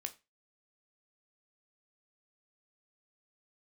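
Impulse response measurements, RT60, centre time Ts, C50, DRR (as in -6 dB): 0.25 s, 5 ms, 17.5 dB, 6.5 dB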